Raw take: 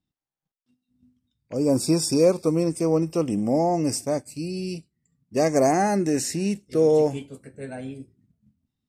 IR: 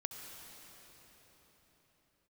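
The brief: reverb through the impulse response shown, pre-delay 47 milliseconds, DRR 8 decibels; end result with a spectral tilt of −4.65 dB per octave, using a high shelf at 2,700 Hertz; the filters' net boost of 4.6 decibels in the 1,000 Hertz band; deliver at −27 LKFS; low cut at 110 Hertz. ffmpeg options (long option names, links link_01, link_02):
-filter_complex "[0:a]highpass=110,equalizer=frequency=1000:width_type=o:gain=6.5,highshelf=frequency=2700:gain=4.5,asplit=2[link_01][link_02];[1:a]atrim=start_sample=2205,adelay=47[link_03];[link_02][link_03]afir=irnorm=-1:irlink=0,volume=-7dB[link_04];[link_01][link_04]amix=inputs=2:normalize=0,volume=-6dB"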